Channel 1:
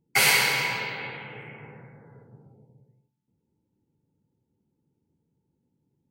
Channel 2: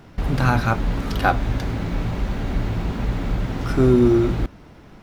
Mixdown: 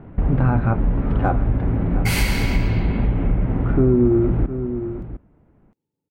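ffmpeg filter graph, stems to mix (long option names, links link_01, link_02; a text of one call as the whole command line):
ffmpeg -i stem1.wav -i stem2.wav -filter_complex "[0:a]bass=frequency=250:gain=-9,treble=frequency=4000:gain=-1,adelay=1900,volume=-3dB[link_01];[1:a]lowpass=frequency=2600:width=0.5412,lowpass=frequency=2600:width=1.3066,deesser=0.85,tiltshelf=frequency=1100:gain=7.5,volume=-1dB,asplit=2[link_02][link_03];[link_03]volume=-16dB,aecho=0:1:707:1[link_04];[link_01][link_02][link_04]amix=inputs=3:normalize=0,acompressor=threshold=-15dB:ratio=2.5" out.wav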